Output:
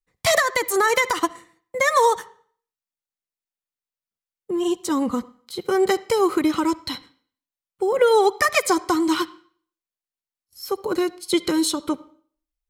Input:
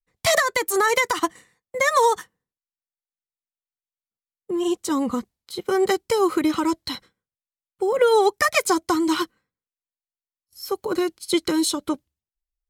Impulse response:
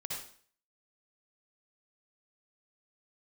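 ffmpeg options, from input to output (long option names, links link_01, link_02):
-filter_complex "[0:a]asplit=2[link_01][link_02];[1:a]atrim=start_sample=2205,lowpass=4400[link_03];[link_02][link_03]afir=irnorm=-1:irlink=0,volume=-17dB[link_04];[link_01][link_04]amix=inputs=2:normalize=0"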